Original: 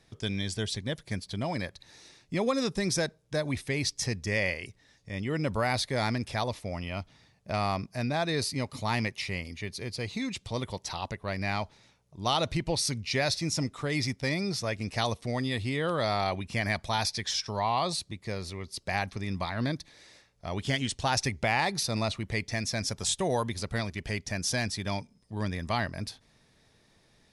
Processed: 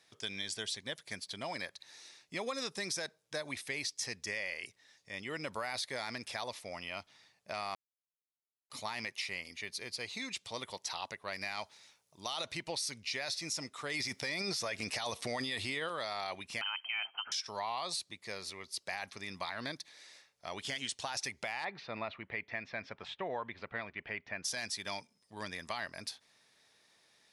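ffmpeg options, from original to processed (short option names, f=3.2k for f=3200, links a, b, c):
-filter_complex "[0:a]asettb=1/sr,asplit=3[a][b][c];[a]atrim=end=11.334[d];[b]atrim=start=11.33:end=12.44,asetpts=PTS-STARTPTS,afade=t=in:d=0.004:c=qsin,afade=t=out:st=1.106:d=0.004:c=qsin,highshelf=f=5.1k:g=7.5[e];[c]atrim=start=12.436[f];[d][e]acrossfade=d=0.004:c1=hsin:c2=qsin[g];[g][f]acrossfade=d=0.004:c1=qsin:c2=hsin,asettb=1/sr,asplit=3[h][i][j];[h]atrim=end=16.614[k];[i]atrim=start=16.61:end=17.32,asetpts=PTS-STARTPTS,afade=t=in:d=0.004:c=qsin,afade=t=out:st=0.706:d=0.004:c=qsin,lowpass=f=2.7k:t=q:w=0.5098,lowpass=f=2.7k:t=q:w=0.6013,lowpass=f=2.7k:t=q:w=0.9,lowpass=f=2.7k:t=q:w=2.563,afreqshift=-3200[l];[j]atrim=start=17.316[m];[k][l]acrossfade=d=0.004:c1=hsin:c2=qsin[n];[n][m]acrossfade=d=0.004:c1=qsin:c2=hsin,asplit=3[o][p][q];[o]afade=t=out:st=21.63:d=0.02[r];[p]lowpass=f=2.6k:w=0.5412,lowpass=f=2.6k:w=1.3066,afade=t=in:st=21.63:d=0.02,afade=t=out:st=24.44:d=0.02[s];[q]afade=t=in:st=24.44:d=0.02[t];[r][s][t]amix=inputs=3:normalize=0,asplit=5[u][v][w][x][y];[u]atrim=end=7.75,asetpts=PTS-STARTPTS,afade=t=out:st=7.746:d=0.004:c=hsin[z];[v]atrim=start=7.75:end=8.7,asetpts=PTS-STARTPTS,volume=0[aa];[w]atrim=start=8.7:end=13.942,asetpts=PTS-STARTPTS,afade=t=in:d=0.004:c=hsin[ab];[x]atrim=start=13.938:end=15.892,asetpts=PTS-STARTPTS,volume=11dB[ac];[y]atrim=start=15.888[ad];[z][aa][ab]concat=n=3:v=0:a=1[ae];[ae][ac]acrossfade=d=0.004:c1=hsin:c2=hsin[af];[af][ad]acrossfade=d=0.004:c1=hsin:c2=hsin,highpass=f=1.1k:p=1,alimiter=limit=-23dB:level=0:latency=1:release=15,acompressor=threshold=-35dB:ratio=2.5"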